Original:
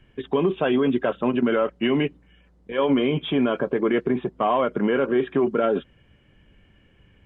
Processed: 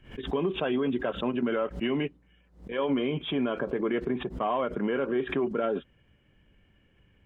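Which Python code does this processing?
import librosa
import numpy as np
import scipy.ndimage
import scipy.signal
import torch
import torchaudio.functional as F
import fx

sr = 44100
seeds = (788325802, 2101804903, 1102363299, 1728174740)

y = fx.pre_swell(x, sr, db_per_s=130.0)
y = y * librosa.db_to_amplitude(-7.0)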